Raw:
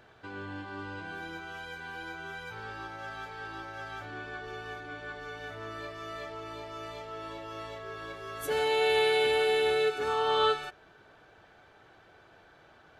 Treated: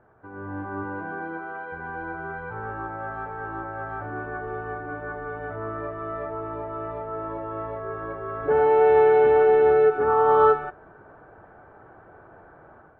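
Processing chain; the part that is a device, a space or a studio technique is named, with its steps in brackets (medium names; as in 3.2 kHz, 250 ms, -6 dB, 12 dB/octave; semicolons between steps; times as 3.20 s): 0.83–1.71 s: high-pass 120 Hz -> 310 Hz 12 dB/octave; action camera in a waterproof case (low-pass 1.4 kHz 24 dB/octave; level rider gain up to 10 dB; AAC 48 kbps 24 kHz)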